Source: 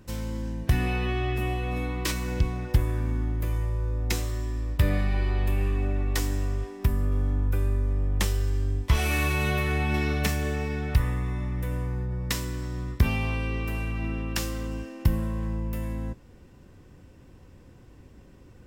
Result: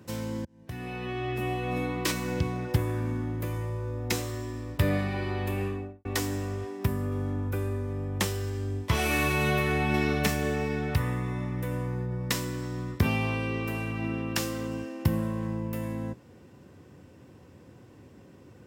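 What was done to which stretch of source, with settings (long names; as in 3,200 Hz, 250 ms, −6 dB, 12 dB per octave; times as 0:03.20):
0:00.45–0:01.73: fade in
0:05.60–0:06.05: fade out and dull
whole clip: high-pass filter 88 Hz 24 dB per octave; parametric band 480 Hz +3 dB 2.5 octaves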